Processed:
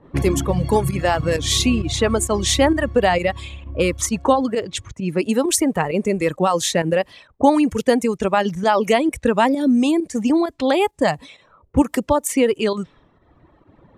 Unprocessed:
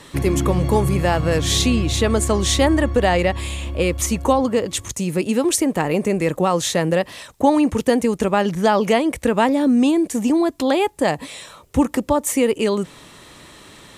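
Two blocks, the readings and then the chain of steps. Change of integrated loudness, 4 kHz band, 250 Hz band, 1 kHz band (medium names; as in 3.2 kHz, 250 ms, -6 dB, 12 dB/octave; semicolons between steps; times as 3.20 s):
0.0 dB, +0.5 dB, -0.5 dB, +1.0 dB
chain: reverb removal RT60 1.7 s; volume shaper 132 bpm, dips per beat 1, -10 dB, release 79 ms; level-controlled noise filter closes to 640 Hz, open at -17.5 dBFS; trim +1.5 dB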